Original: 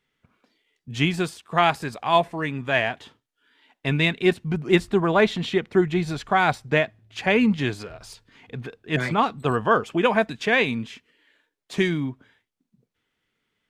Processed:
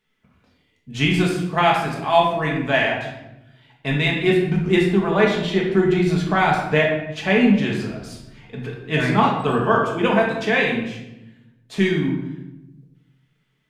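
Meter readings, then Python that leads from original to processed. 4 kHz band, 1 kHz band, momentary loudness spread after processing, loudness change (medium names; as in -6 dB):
+2.5 dB, +3.0 dB, 15 LU, +3.5 dB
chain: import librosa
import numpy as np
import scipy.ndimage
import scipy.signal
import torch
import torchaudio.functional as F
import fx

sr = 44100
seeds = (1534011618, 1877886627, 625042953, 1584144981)

y = fx.rider(x, sr, range_db=4, speed_s=0.5)
y = fx.room_shoebox(y, sr, seeds[0], volume_m3=360.0, walls='mixed', distance_m=1.5)
y = y * librosa.db_to_amplitude(-1.0)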